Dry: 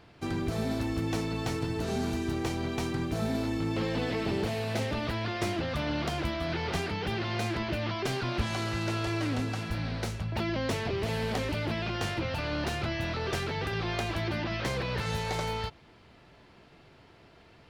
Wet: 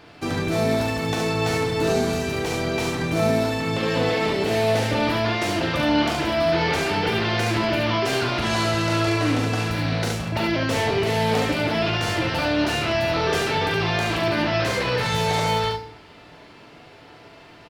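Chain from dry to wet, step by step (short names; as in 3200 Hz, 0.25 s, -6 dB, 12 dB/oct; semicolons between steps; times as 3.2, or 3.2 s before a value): limiter -23 dBFS, peak gain reduction 5.5 dB; low shelf 140 Hz -10 dB; on a send: early reflections 41 ms -6 dB, 71 ms -3.5 dB; on the sum: FDN reverb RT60 0.6 s, low-frequency decay 1.3×, high-frequency decay 0.95×, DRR 6 dB; gain +8.5 dB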